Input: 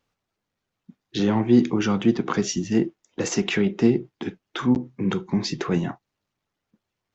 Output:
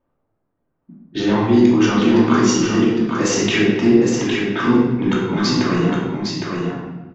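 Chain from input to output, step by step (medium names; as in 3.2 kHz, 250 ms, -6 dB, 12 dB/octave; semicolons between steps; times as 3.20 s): bass shelf 430 Hz -5.5 dB; level-controlled noise filter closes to 770 Hz, open at -23 dBFS; in parallel at +2.5 dB: compression, threshold -34 dBFS, peak gain reduction 17.5 dB; on the sum: delay 810 ms -5 dB; reverberation RT60 1.2 s, pre-delay 3 ms, DRR -5.5 dB; trim -1 dB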